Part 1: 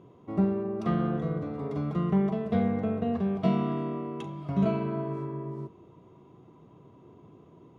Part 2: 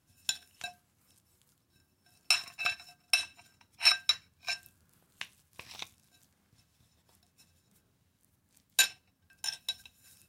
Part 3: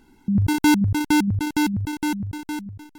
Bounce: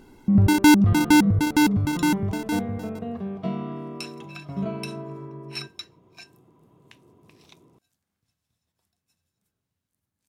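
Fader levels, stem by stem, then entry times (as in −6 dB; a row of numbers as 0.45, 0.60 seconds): −3.5, −11.0, +2.5 decibels; 0.00, 1.70, 0.00 seconds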